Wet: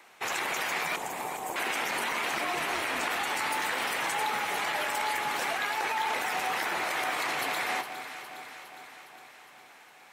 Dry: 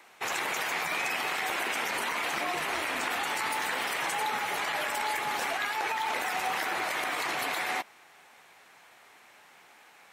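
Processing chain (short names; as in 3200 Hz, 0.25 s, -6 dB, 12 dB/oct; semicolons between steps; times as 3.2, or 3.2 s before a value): 0.96–1.56 elliptic band-stop 1000–7100 Hz; on a send: echo with dull and thin repeats by turns 0.205 s, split 980 Hz, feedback 79%, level -9 dB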